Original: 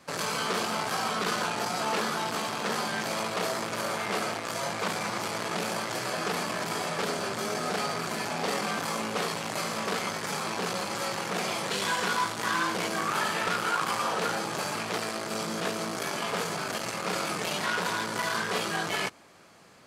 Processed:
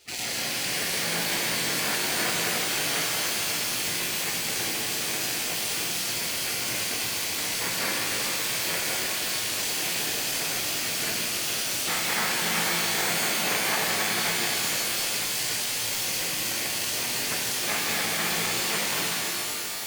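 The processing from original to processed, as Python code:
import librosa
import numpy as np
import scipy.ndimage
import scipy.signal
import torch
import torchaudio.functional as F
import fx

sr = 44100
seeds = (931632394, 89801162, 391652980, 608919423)

p1 = fx.band_shelf(x, sr, hz=1400.0, db=8.0, octaves=1.7)
p2 = fx.echo_alternate(p1, sr, ms=278, hz=1600.0, feedback_pct=58, wet_db=-13.5)
p3 = fx.over_compress(p2, sr, threshold_db=-29.0, ratio=-1.0)
p4 = p2 + (p3 * librosa.db_to_amplitude(0.0))
p5 = fx.mod_noise(p4, sr, seeds[0], snr_db=20)
p6 = fx.spec_gate(p5, sr, threshold_db=-15, keep='weak')
p7 = fx.rev_shimmer(p6, sr, seeds[1], rt60_s=3.4, semitones=12, shimmer_db=-2, drr_db=-2.5)
y = p7 * librosa.db_to_amplitude(-3.5)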